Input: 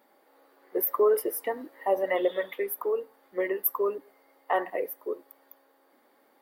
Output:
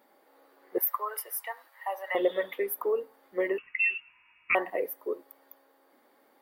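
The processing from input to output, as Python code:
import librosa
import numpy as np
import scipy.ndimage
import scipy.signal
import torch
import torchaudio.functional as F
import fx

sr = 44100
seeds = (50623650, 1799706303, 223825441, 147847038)

y = fx.highpass(x, sr, hz=830.0, slope=24, at=(0.78, 2.15))
y = fx.freq_invert(y, sr, carrier_hz=3100, at=(3.58, 4.55))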